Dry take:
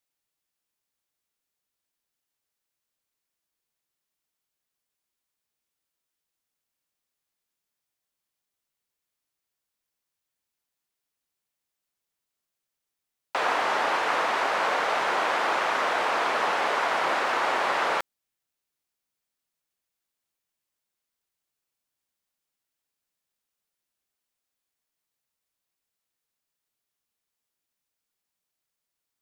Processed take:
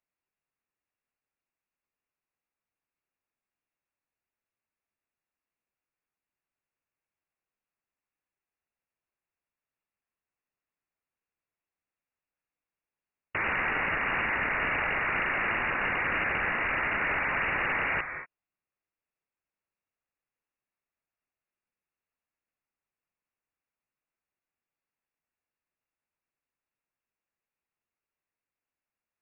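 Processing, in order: non-linear reverb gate 0.26 s rising, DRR 8.5 dB; wrapped overs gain 17.5 dB; inverted band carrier 2800 Hz; gain -3 dB

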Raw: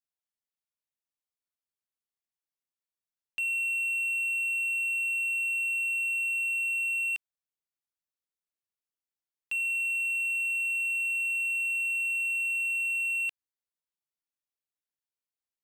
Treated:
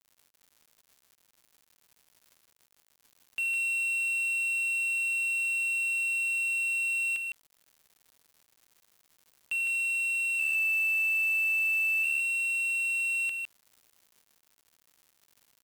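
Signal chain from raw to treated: 10.39–12.04 frequency shift -73 Hz; crackle 210/s -48 dBFS; notch 5200 Hz, Q 13; bit-crush 8-bit; echo 0.158 s -5 dB

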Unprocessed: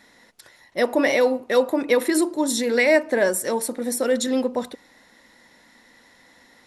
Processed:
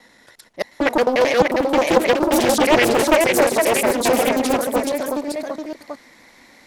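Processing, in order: slices in reverse order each 89 ms, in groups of 3; echoes that change speed 0.638 s, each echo +1 st, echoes 3; Doppler distortion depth 0.5 ms; gain +2.5 dB

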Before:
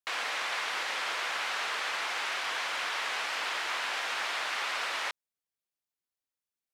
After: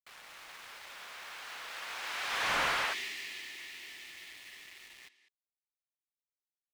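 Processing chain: Doppler pass-by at 2.59, 20 m/s, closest 2.6 m; echo 0.197 s -9 dB; spectral gain 2.93–5.63, 430–1700 Hz -18 dB; in parallel at -2 dB: companded quantiser 4-bit; on the sum: slew limiter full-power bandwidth 75 Hz; gain +1 dB

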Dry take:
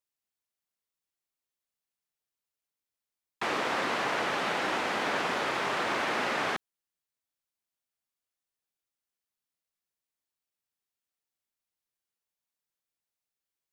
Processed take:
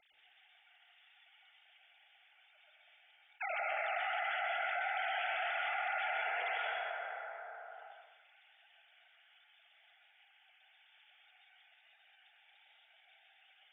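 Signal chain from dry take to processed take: sine-wave speech; fixed phaser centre 420 Hz, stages 4; 6.12–6.53 AM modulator 240 Hz, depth 30%; reverb RT60 1.4 s, pre-delay 0.113 s, DRR -4.5 dB; fast leveller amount 70%; gain -7.5 dB

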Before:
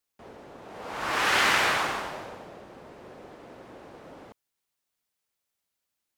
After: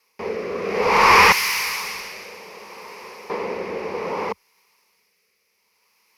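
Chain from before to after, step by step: overdrive pedal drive 29 dB, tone 2600 Hz, clips at -9.5 dBFS; ripple EQ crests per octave 0.84, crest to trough 13 dB; rotary speaker horn 0.6 Hz; 1.32–3.3 pre-emphasis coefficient 0.9; gain +4 dB

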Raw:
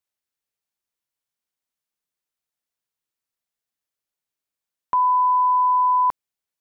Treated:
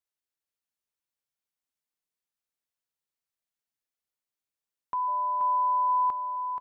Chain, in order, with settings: limiter -19 dBFS, peak gain reduction 4.5 dB; 5.07–5.88 whine 600 Hz -39 dBFS; feedback echo 0.479 s, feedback 32%, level -6.5 dB; gain -6 dB

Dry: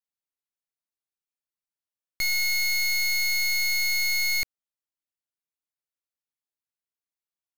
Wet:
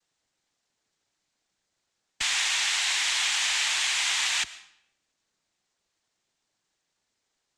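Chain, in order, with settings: power-law curve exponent 0.7; noise vocoder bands 6; frequency shift -100 Hz; digital reverb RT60 0.71 s, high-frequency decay 0.9×, pre-delay 75 ms, DRR 17 dB

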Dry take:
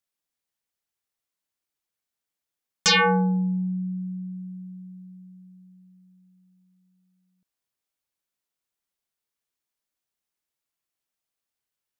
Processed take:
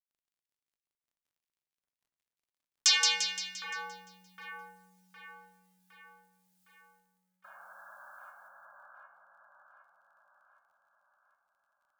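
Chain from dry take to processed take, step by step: weighting filter A; painted sound noise, 7.44–8.31, 530–1700 Hz -37 dBFS; requantised 12-bit, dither none; differentiator; crackle 19/s -67 dBFS; split-band echo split 1800 Hz, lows 0.761 s, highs 0.173 s, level -3 dB; on a send at -12 dB: reverb RT60 1.1 s, pre-delay 10 ms

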